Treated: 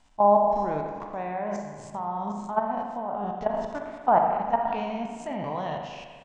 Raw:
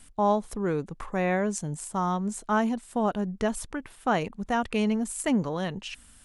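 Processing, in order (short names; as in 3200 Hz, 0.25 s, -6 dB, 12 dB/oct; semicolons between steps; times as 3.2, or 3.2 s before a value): spectral trails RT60 0.77 s; steep low-pass 6900 Hz 36 dB/oct; band shelf 790 Hz +11.5 dB 1 oct; treble ducked by the level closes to 1500 Hz, closed at -12.5 dBFS; level quantiser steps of 14 dB; on a send: echo 88 ms -18 dB; on the sum: spring tank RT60 1.7 s, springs 39/58 ms, chirp 50 ms, DRR 3.5 dB; gain -4 dB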